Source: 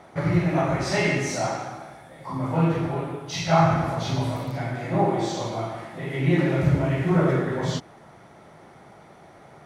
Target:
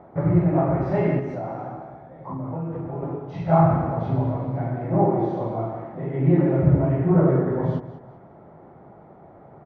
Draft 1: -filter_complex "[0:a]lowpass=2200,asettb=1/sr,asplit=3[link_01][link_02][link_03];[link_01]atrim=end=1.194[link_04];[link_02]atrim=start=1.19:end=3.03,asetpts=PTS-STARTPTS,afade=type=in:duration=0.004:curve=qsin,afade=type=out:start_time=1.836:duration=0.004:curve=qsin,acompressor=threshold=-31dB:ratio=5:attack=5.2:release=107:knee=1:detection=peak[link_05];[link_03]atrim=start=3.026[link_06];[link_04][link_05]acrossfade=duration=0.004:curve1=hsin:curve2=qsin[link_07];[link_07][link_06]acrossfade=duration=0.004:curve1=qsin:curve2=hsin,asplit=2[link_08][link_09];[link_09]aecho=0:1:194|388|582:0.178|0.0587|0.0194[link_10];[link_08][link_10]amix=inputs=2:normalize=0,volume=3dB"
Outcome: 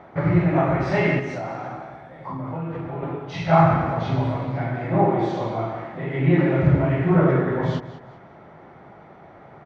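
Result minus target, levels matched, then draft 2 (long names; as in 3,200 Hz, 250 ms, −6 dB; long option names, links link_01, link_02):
2,000 Hz band +10.5 dB
-filter_complex "[0:a]lowpass=860,asettb=1/sr,asplit=3[link_01][link_02][link_03];[link_01]atrim=end=1.194[link_04];[link_02]atrim=start=1.19:end=3.03,asetpts=PTS-STARTPTS,afade=type=in:duration=0.004:curve=qsin,afade=type=out:start_time=1.836:duration=0.004:curve=qsin,acompressor=threshold=-31dB:ratio=5:attack=5.2:release=107:knee=1:detection=peak[link_05];[link_03]atrim=start=3.026[link_06];[link_04][link_05]acrossfade=duration=0.004:curve1=hsin:curve2=qsin[link_07];[link_07][link_06]acrossfade=duration=0.004:curve1=qsin:curve2=hsin,asplit=2[link_08][link_09];[link_09]aecho=0:1:194|388|582:0.178|0.0587|0.0194[link_10];[link_08][link_10]amix=inputs=2:normalize=0,volume=3dB"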